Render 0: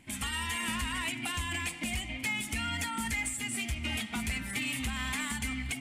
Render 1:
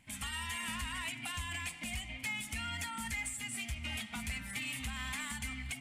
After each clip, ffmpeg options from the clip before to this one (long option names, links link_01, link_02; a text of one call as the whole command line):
ffmpeg -i in.wav -af "equalizer=frequency=350:width=1.7:gain=-10.5,volume=-5dB" out.wav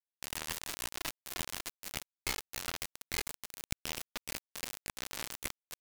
ffmpeg -i in.wav -af "flanger=delay=20:depth=6.6:speed=1.2,acrusher=bits=3:dc=4:mix=0:aa=0.000001,volume=8dB" out.wav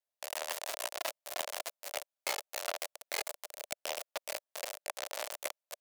ffmpeg -i in.wav -af "highpass=frequency=600:width_type=q:width=4.9" out.wav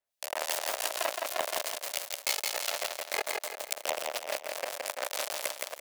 ffmpeg -i in.wav -filter_complex "[0:a]acrossover=split=2400[link_01][link_02];[link_01]aeval=exprs='val(0)*(1-0.7/2+0.7/2*cos(2*PI*2.8*n/s))':channel_layout=same[link_03];[link_02]aeval=exprs='val(0)*(1-0.7/2-0.7/2*cos(2*PI*2.8*n/s))':channel_layout=same[link_04];[link_03][link_04]amix=inputs=2:normalize=0,asplit=2[link_05][link_06];[link_06]aecho=0:1:168|336|504|672|840:0.708|0.29|0.119|0.0488|0.02[link_07];[link_05][link_07]amix=inputs=2:normalize=0,volume=7.5dB" out.wav